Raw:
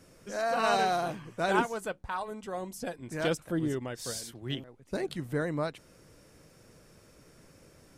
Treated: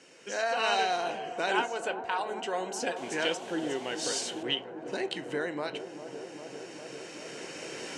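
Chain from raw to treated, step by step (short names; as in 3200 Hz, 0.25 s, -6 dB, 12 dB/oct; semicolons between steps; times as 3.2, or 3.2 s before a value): recorder AGC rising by 7.3 dB/s; notch 3400 Hz, Q 7.8; in parallel at +1 dB: compressor, threshold -36 dBFS, peak gain reduction 14.5 dB; 2.96–4.43 on the sum: requantised 8-bit, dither triangular; speaker cabinet 450–7600 Hz, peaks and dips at 610 Hz -7 dB, 1200 Hz -9 dB, 3000 Hz +9 dB, 5000 Hz -4 dB; dark delay 0.399 s, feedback 83%, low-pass 840 Hz, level -9.5 dB; on a send at -13 dB: reverb RT60 0.35 s, pre-delay 12 ms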